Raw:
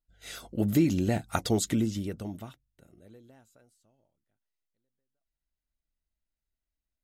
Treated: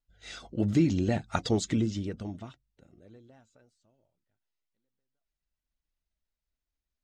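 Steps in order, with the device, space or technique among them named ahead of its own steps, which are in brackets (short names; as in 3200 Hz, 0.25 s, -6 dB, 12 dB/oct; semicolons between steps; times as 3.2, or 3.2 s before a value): clip after many re-uploads (LPF 6800 Hz 24 dB/oct; bin magnitudes rounded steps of 15 dB)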